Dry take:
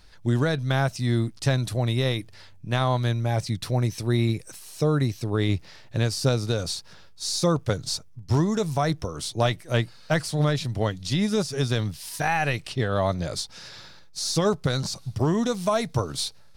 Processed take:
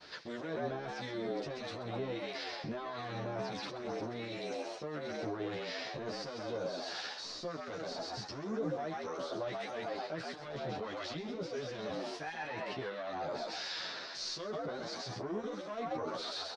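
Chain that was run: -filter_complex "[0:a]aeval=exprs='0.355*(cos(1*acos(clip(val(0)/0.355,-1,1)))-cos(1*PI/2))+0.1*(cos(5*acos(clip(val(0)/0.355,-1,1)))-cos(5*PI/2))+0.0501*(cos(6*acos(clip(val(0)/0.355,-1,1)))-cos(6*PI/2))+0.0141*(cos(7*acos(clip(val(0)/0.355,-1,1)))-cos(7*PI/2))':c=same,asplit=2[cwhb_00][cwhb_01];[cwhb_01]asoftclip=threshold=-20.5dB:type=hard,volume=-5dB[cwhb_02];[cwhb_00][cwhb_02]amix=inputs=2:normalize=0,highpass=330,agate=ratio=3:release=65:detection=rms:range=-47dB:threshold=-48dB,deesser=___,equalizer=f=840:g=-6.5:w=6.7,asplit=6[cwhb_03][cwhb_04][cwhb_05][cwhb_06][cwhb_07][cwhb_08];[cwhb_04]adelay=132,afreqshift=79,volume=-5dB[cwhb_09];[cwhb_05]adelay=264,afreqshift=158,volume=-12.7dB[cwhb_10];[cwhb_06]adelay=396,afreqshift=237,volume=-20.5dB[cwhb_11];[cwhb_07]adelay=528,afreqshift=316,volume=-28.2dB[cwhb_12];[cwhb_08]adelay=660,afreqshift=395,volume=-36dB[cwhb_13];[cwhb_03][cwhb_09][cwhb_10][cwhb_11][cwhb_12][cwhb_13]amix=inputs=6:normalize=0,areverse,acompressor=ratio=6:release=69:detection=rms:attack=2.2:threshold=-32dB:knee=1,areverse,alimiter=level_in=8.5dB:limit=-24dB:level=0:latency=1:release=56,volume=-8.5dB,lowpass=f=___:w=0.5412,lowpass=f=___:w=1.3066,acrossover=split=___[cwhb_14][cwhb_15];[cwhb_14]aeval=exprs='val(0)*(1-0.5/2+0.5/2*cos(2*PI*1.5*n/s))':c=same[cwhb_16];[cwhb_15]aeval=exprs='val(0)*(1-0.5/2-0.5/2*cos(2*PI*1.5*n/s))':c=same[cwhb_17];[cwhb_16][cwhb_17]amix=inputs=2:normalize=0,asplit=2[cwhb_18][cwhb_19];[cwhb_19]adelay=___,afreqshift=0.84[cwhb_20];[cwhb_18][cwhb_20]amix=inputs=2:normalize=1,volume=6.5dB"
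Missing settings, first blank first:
0.8, 5.5k, 5.5k, 1300, 11.5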